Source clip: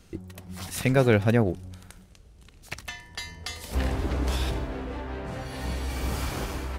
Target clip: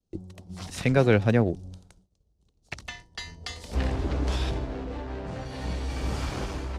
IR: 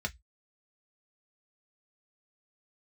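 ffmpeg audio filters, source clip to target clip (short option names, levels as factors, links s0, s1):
-filter_complex "[0:a]agate=range=0.0224:threshold=0.01:ratio=3:detection=peak,acrossover=split=240|970|3600[s0][s1][s2][s3];[s2]aeval=exprs='sgn(val(0))*max(abs(val(0))-0.00251,0)':c=same[s4];[s0][s1][s4][s3]amix=inputs=4:normalize=0,lowpass=6600"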